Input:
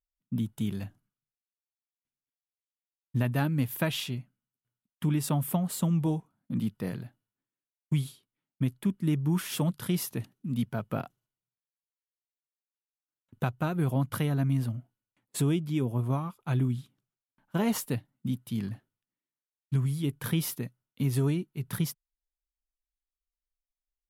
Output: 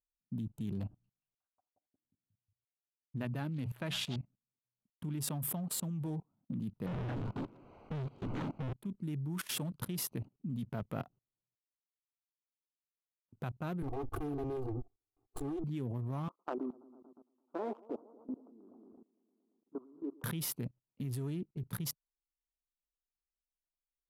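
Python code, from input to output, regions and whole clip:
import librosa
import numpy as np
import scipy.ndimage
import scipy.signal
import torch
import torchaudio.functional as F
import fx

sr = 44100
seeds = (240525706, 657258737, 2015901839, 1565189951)

y = fx.chain(x, sr, fx.lowpass(hz=10000.0, slope=12),
    fx.hum_notches(base_hz=60, count=3),
    fx.echo_stepped(ms=180, hz=4300.0, octaves=-0.7, feedback_pct=70, wet_db=-5.0), at=(0.86, 4.16))
y = fx.chain(y, sr, fx.clip_1bit(),
    fx.lowpass(hz=2000.0, slope=12), at=(6.86, 8.73))
y = fx.chain(y, sr, fx.lower_of_two(delay_ms=2.8),
    fx.high_shelf_res(hz=1600.0, db=-10.0, q=1.5),
    fx.comb(ms=2.5, depth=0.95), at=(13.82, 15.64))
y = fx.chain(y, sr, fx.ellip_bandpass(low_hz=300.0, high_hz=1300.0, order=3, stop_db=40),
    fx.echo_heads(ms=114, heads='first and second', feedback_pct=51, wet_db=-14.5), at=(16.28, 20.24))
y = fx.wiener(y, sr, points=25)
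y = fx.level_steps(y, sr, step_db=21)
y = F.gain(torch.from_numpy(y), 5.0).numpy()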